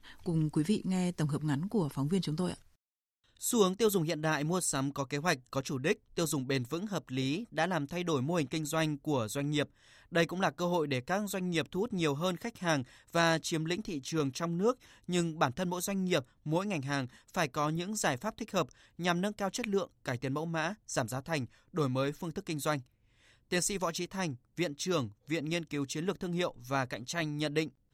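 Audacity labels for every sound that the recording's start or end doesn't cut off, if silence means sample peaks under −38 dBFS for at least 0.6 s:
3.420000	22.790000	sound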